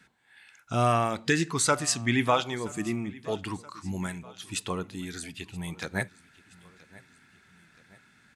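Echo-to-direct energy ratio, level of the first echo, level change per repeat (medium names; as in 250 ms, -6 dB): -20.5 dB, -21.5 dB, -5.5 dB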